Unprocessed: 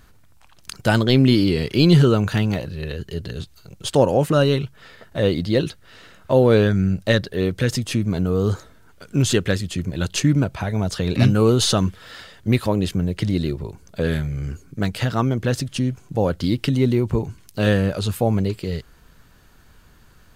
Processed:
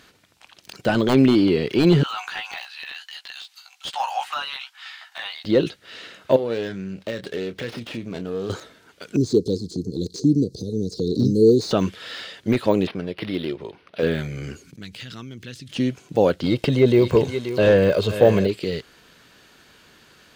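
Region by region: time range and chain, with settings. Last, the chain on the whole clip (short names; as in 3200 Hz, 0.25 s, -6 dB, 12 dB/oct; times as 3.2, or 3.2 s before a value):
2.03–5.45 Chebyshev high-pass 760 Hz, order 6 + doubler 15 ms -5 dB
6.36–8.5 compressor 4:1, threshold -28 dBFS + doubler 26 ms -11.5 dB + running maximum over 5 samples
9.16–11.71 Chebyshev band-stop 470–4200 Hz, order 5 + high shelf 9100 Hz -10.5 dB + upward compressor, threshold -22 dBFS
12.87–14.03 low shelf 310 Hz -9.5 dB + decimation joined by straight lines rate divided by 6×
14.64–15.71 gate -41 dBFS, range -10 dB + passive tone stack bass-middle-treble 6-0-2 + fast leveller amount 70%
16.45–18.47 comb 1.9 ms, depth 48% + echo 0.53 s -13.5 dB + sample leveller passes 1
whole clip: weighting filter D; de-esser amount 85%; bell 450 Hz +8 dB 2.7 oct; gain -3 dB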